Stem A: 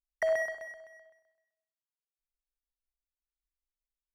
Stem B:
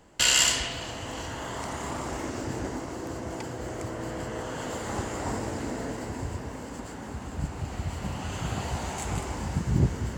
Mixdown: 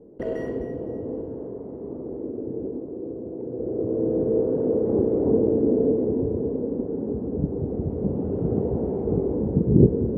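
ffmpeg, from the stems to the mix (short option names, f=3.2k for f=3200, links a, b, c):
-filter_complex "[0:a]asoftclip=type=tanh:threshold=-23dB,volume=-11dB[a];[1:a]lowpass=f=450:t=q:w=5.4,volume=4.5dB,afade=t=out:st=0.92:d=0.69:silence=0.421697,afade=t=in:st=3.37:d=0.8:silence=0.316228[b];[a][b]amix=inputs=2:normalize=0,equalizer=f=240:w=0.57:g=12.5"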